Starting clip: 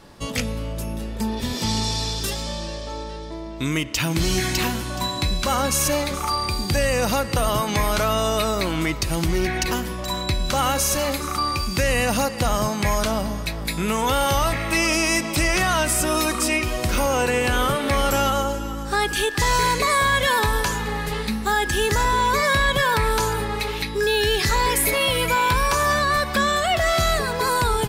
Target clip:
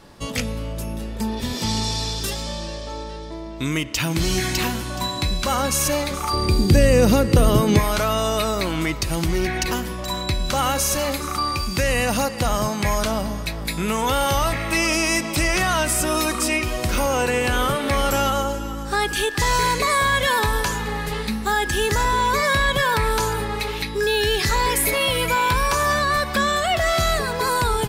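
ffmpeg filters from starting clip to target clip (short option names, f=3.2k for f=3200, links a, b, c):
-filter_complex "[0:a]asettb=1/sr,asplit=3[a][b][c];[a]atrim=end=6.334[d];[b]atrim=start=6.33:end=7.79,asetpts=PTS-STARTPTS,afade=t=in:d=0.004:c=qsin,afade=t=out:st=1.456:d=0.004:c=qsin,lowshelf=f=560:t=q:w=1.5:g=8.5[e];[c]atrim=start=7.786[f];[d][e]acrossfade=d=0.004:c1=hsin:c2=qsin[g];[g][f]acrossfade=d=0.004:c1=qsin:c2=hsin"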